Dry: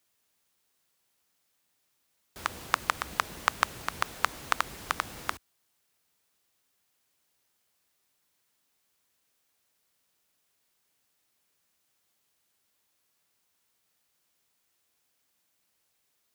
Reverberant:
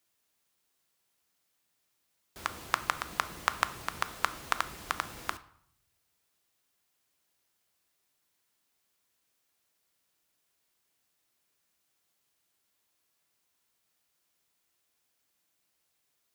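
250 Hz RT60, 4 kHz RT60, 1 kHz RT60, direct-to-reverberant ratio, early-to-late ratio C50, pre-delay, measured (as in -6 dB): 0.95 s, 0.50 s, 0.65 s, 12.0 dB, 16.5 dB, 3 ms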